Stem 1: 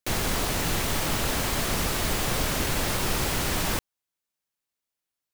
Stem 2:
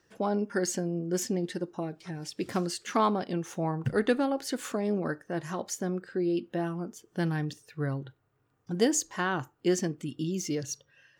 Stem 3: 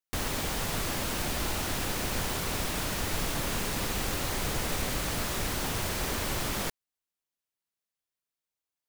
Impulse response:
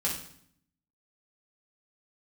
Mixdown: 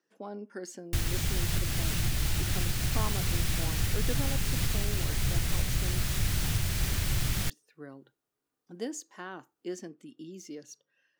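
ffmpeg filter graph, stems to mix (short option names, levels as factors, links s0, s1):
-filter_complex "[0:a]adelay=1300,volume=0.562[s0];[1:a]highpass=f=220:w=0.5412,highpass=f=220:w=1.3066,volume=0.237,asplit=3[s1][s2][s3];[s1]atrim=end=6.07,asetpts=PTS-STARTPTS,afade=t=out:st=6.066:d=0.004:c=hsin[s4];[s2]atrim=start=6.07:end=7.47,asetpts=PTS-STARTPTS,volume=0[s5];[s3]atrim=start=7.47,asetpts=PTS-STARTPTS,afade=t=in:d=0.004:c=hsin[s6];[s4][s5][s6]concat=n=3:v=0:a=1,asplit=2[s7][s8];[2:a]adelay=800,volume=1.06[s9];[s8]apad=whole_len=292732[s10];[s0][s10]sidechaincompress=threshold=0.00158:ratio=8:attack=16:release=200[s11];[s11][s9]amix=inputs=2:normalize=0,equalizer=f=125:t=o:w=1:g=5,equalizer=f=250:t=o:w=1:g=-7,equalizer=f=500:t=o:w=1:g=-9,equalizer=f=1000:t=o:w=1:g=-8,alimiter=limit=0.0841:level=0:latency=1:release=311,volume=1[s12];[s7][s12]amix=inputs=2:normalize=0,lowshelf=f=210:g=7.5"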